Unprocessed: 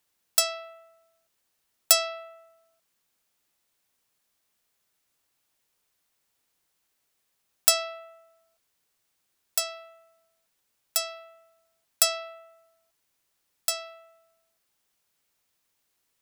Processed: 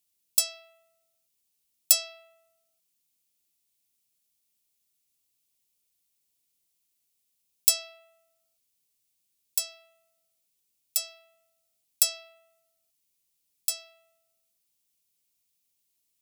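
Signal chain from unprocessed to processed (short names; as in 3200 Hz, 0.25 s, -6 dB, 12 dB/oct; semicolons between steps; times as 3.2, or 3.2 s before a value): EQ curve 220 Hz 0 dB, 1600 Hz -13 dB, 2400 Hz -1 dB, 11000 Hz +7 dB; gain -6 dB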